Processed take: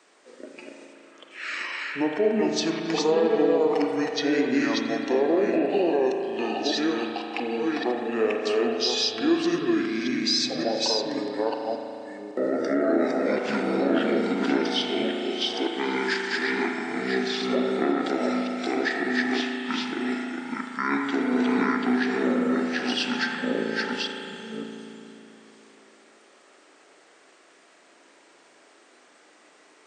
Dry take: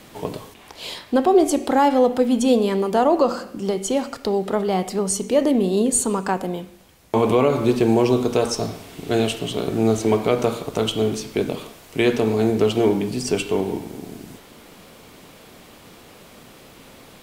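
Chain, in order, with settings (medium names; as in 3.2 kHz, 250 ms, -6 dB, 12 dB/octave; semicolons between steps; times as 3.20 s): chunks repeated in reverse 323 ms, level -1.5 dB; high-pass 580 Hz 24 dB/octave; peak limiter -14.5 dBFS, peak gain reduction 9.5 dB; spectral noise reduction 11 dB; speed mistake 78 rpm record played at 45 rpm; spring tank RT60 3 s, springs 36 ms, chirp 55 ms, DRR 3 dB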